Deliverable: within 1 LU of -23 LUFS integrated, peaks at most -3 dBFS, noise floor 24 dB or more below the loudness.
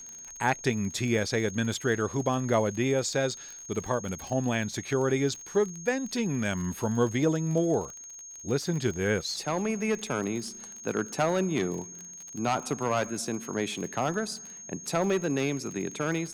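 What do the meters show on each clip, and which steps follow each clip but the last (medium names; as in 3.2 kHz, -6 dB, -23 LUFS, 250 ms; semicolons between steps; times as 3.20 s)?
tick rate 37 per s; steady tone 6.5 kHz; tone level -42 dBFS; loudness -29.5 LUFS; peak level -11.0 dBFS; loudness target -23.0 LUFS
-> de-click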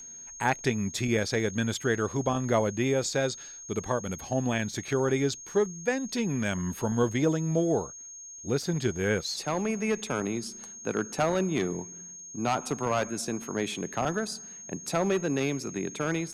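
tick rate 0.12 per s; steady tone 6.5 kHz; tone level -42 dBFS
-> band-stop 6.5 kHz, Q 30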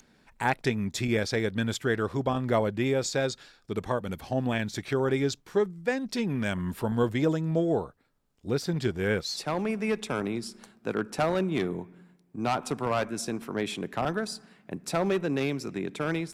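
steady tone not found; loudness -29.5 LUFS; peak level -11.5 dBFS; loudness target -23.0 LUFS
-> trim +6.5 dB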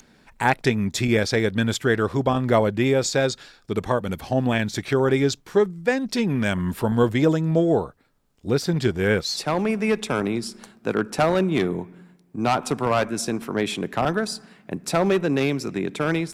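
loudness -23.0 LUFS; peak level -5.0 dBFS; noise floor -58 dBFS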